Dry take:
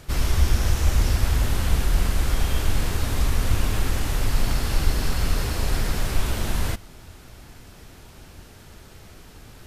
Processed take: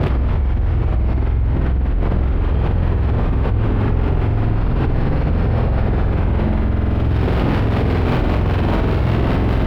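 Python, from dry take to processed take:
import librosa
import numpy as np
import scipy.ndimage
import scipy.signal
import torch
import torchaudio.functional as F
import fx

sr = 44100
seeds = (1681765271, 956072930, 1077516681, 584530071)

p1 = scipy.signal.sosfilt(scipy.signal.butter(2, 48.0, 'highpass', fs=sr, output='sos'), x)
p2 = fx.high_shelf(p1, sr, hz=2100.0, db=-11.0)
p3 = fx.dmg_crackle(p2, sr, seeds[0], per_s=340.0, level_db=-36.0)
p4 = fx.harmonic_tremolo(p3, sr, hz=5.1, depth_pct=50, crossover_hz=840.0)
p5 = fx.sample_hold(p4, sr, seeds[1], rate_hz=2200.0, jitter_pct=0)
p6 = p4 + (p5 * 10.0 ** (-5.0 / 20.0))
p7 = fx.air_absorb(p6, sr, metres=420.0)
p8 = fx.room_flutter(p7, sr, wall_m=8.0, rt60_s=1.0)
p9 = fx.env_flatten(p8, sr, amount_pct=100)
y = p9 * 10.0 ** (-4.0 / 20.0)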